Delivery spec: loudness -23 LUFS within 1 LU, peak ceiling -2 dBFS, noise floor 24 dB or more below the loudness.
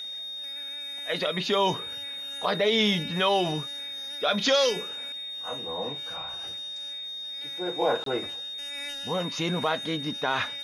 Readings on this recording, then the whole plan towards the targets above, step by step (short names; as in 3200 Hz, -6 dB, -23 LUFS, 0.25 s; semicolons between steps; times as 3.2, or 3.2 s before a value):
dropouts 1; longest dropout 23 ms; steady tone 3700 Hz; tone level -34 dBFS; loudness -28.0 LUFS; peak -12.0 dBFS; loudness target -23.0 LUFS
-> interpolate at 8.04, 23 ms; notch 3700 Hz, Q 30; gain +5 dB